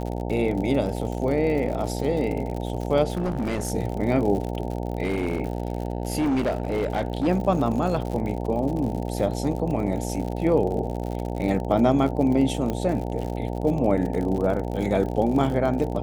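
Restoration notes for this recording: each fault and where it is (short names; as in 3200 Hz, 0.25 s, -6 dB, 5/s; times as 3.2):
buzz 60 Hz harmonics 15 -29 dBFS
crackle 66/s -30 dBFS
3.13–3.72 clipped -21.5 dBFS
5.03–7.28 clipped -19.5 dBFS
12.7 pop -15 dBFS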